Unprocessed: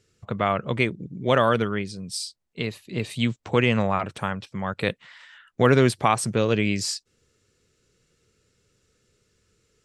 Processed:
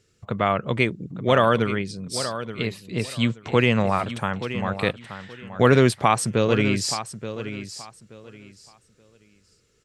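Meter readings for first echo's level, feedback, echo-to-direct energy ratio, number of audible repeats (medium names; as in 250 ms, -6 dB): -11.5 dB, 23%, -11.5 dB, 2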